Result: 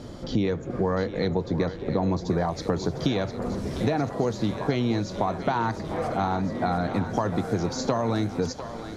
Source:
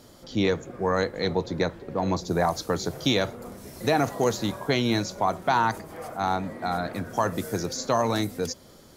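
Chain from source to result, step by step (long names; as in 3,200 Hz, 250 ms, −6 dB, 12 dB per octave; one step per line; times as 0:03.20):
low-shelf EQ 470 Hz +8.5 dB
downward compressor 6 to 1, threshold −29 dBFS, peak gain reduction 15 dB
high-frequency loss of the air 77 metres
feedback echo with a high-pass in the loop 704 ms, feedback 71%, high-pass 420 Hz, level −10.5 dB
level +6.5 dB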